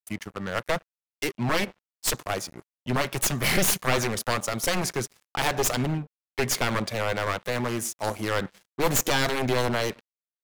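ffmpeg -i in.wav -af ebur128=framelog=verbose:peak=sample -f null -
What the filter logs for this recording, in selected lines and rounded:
Integrated loudness:
  I:         -26.9 LUFS
  Threshold: -37.1 LUFS
Loudness range:
  LRA:         2.8 LU
  Threshold: -46.8 LUFS
  LRA low:   -28.3 LUFS
  LRA high:  -25.5 LUFS
Sample peak:
  Peak:       -7.2 dBFS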